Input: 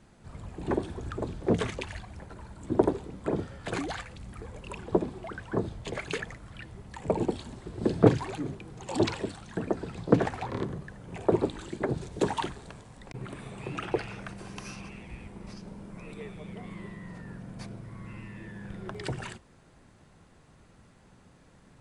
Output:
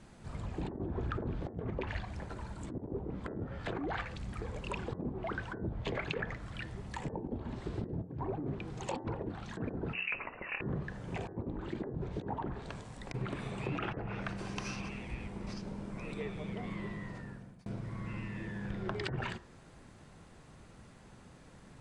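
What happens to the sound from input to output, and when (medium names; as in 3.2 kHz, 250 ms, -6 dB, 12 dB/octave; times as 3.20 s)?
9.93–10.61 s: frequency inversion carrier 2.8 kHz
17.03–17.66 s: fade out
whole clip: low-pass that closes with the level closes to 720 Hz, closed at -27 dBFS; compressor with a negative ratio -36 dBFS, ratio -1; de-hum 89.18 Hz, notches 22; trim -1.5 dB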